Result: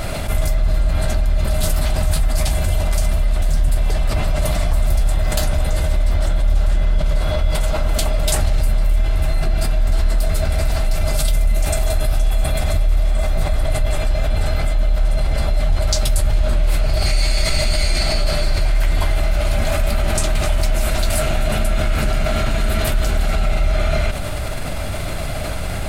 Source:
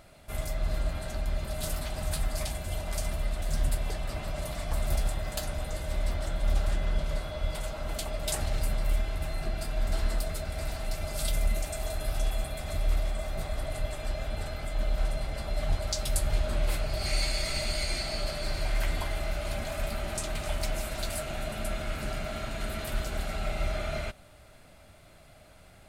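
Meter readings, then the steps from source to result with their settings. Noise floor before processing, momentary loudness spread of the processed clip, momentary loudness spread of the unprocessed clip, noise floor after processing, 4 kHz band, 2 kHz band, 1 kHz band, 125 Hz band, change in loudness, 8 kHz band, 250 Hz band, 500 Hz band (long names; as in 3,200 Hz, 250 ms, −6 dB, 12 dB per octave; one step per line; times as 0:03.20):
−54 dBFS, 2 LU, 5 LU, −22 dBFS, +10.5 dB, +11.0 dB, +11.5 dB, +14.0 dB, +13.0 dB, +11.0 dB, +12.5 dB, +11.5 dB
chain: low-shelf EQ 91 Hz +8 dB
envelope flattener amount 70%
level +2.5 dB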